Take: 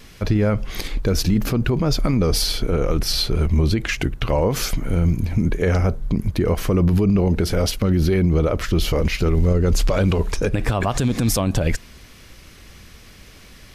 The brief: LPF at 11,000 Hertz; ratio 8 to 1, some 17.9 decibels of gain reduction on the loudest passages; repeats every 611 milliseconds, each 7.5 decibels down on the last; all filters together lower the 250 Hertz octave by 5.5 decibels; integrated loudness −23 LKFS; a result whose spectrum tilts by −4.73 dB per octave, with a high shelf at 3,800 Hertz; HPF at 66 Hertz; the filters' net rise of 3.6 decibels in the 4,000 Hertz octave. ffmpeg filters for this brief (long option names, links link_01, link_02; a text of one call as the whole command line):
ffmpeg -i in.wav -af "highpass=66,lowpass=11000,equalizer=frequency=250:width_type=o:gain=-8.5,highshelf=frequency=3800:gain=-5.5,equalizer=frequency=4000:width_type=o:gain=8,acompressor=threshold=-35dB:ratio=8,aecho=1:1:611|1222|1833|2444|3055:0.422|0.177|0.0744|0.0312|0.0131,volume=14.5dB" out.wav